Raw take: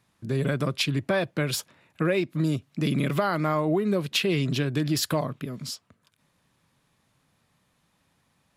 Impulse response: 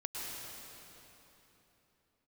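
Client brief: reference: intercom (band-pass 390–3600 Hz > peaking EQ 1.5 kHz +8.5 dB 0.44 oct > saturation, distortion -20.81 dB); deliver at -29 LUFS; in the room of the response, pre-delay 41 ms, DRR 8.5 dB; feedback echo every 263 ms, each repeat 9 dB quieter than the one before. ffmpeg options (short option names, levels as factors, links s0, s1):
-filter_complex "[0:a]aecho=1:1:263|526|789|1052:0.355|0.124|0.0435|0.0152,asplit=2[s0][s1];[1:a]atrim=start_sample=2205,adelay=41[s2];[s1][s2]afir=irnorm=-1:irlink=0,volume=0.299[s3];[s0][s3]amix=inputs=2:normalize=0,highpass=390,lowpass=3600,equalizer=f=1500:t=o:w=0.44:g=8.5,asoftclip=threshold=0.188,volume=0.944"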